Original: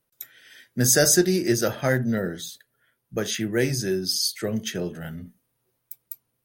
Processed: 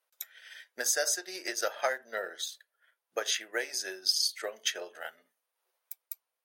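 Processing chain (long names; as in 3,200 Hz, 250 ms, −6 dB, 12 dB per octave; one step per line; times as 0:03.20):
downward compressor 6 to 1, threshold −23 dBFS, peak gain reduction 10 dB
high-pass filter 580 Hz 24 dB per octave
high-shelf EQ 9,200 Hz −9.5 dB
transient designer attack +4 dB, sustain −5 dB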